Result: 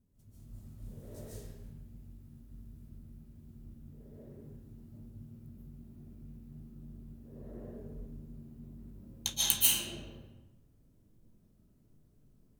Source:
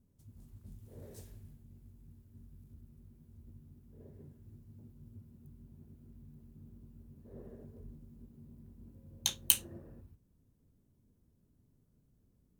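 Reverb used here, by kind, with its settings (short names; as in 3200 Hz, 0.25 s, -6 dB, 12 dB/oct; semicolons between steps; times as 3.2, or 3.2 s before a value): digital reverb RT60 1 s, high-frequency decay 0.8×, pre-delay 0.105 s, DRR -8.5 dB; gain -3 dB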